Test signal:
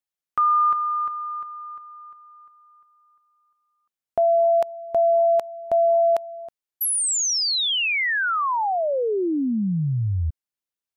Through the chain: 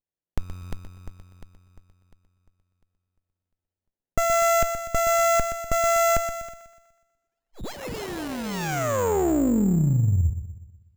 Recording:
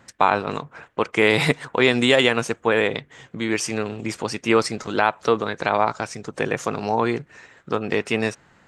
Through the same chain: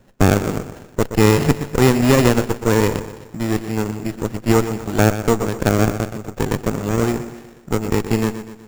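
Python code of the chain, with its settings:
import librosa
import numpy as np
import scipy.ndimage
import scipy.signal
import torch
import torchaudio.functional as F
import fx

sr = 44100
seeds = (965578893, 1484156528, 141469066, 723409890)

y = fx.echo_wet_lowpass(x, sr, ms=123, feedback_pct=48, hz=2400.0, wet_db=-10.5)
y = np.repeat(scipy.signal.resample_poly(y, 1, 6), 6)[:len(y)]
y = fx.running_max(y, sr, window=33)
y = y * librosa.db_to_amplitude(2.5)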